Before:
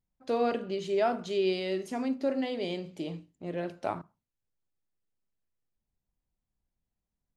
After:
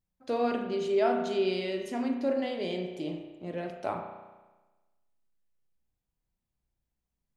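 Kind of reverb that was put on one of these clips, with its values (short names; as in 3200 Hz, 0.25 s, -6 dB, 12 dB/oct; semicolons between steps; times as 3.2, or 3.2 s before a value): spring tank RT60 1.2 s, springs 33 ms, chirp 75 ms, DRR 4 dB; gain -1 dB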